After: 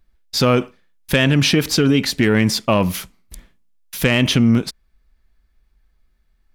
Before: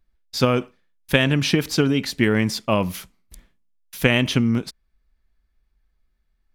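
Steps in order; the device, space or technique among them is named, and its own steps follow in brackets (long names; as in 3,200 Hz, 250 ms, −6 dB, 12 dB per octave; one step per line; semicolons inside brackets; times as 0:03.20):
soft clipper into limiter (soft clipping −8.5 dBFS, distortion −19 dB; brickwall limiter −14 dBFS, peak gain reduction 5 dB)
level +7 dB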